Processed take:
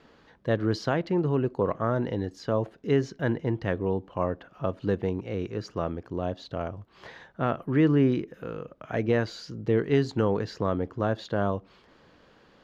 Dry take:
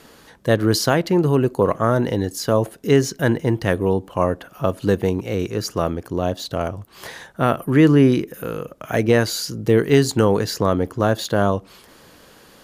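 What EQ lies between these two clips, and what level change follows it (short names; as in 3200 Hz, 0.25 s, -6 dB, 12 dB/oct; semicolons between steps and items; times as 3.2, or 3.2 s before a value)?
air absorption 190 m; -8.0 dB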